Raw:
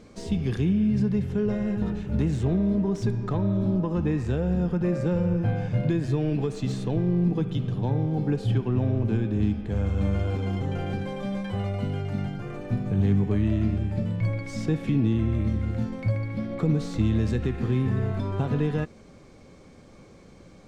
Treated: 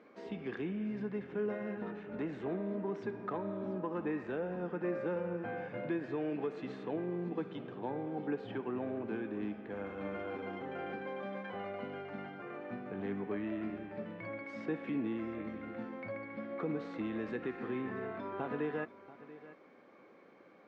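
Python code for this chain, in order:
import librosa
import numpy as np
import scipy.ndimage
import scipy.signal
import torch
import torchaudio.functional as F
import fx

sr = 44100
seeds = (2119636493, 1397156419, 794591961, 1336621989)

p1 = scipy.signal.sosfilt(scipy.signal.cheby1(2, 1.0, [280.0, 1900.0], 'bandpass', fs=sr, output='sos'), x)
p2 = fx.low_shelf(p1, sr, hz=390.0, db=-10.0)
p3 = p2 + fx.echo_single(p2, sr, ms=686, db=-16.5, dry=0)
y = F.gain(torch.from_numpy(p3), -2.0).numpy()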